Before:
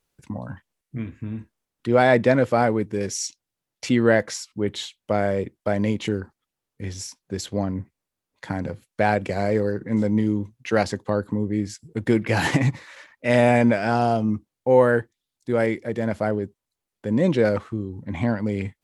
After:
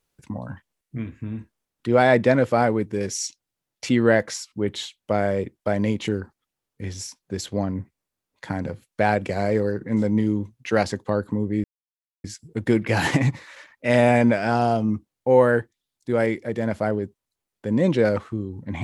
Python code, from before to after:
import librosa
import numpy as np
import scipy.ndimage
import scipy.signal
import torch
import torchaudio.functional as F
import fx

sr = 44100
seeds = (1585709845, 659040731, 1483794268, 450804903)

y = fx.edit(x, sr, fx.insert_silence(at_s=11.64, length_s=0.6), tone=tone)